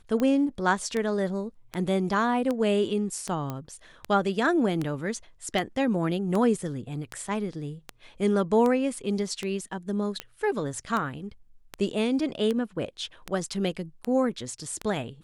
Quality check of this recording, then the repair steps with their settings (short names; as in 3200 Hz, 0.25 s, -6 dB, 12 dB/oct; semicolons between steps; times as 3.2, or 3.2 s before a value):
tick 78 rpm -16 dBFS
3.5 pop -19 dBFS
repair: de-click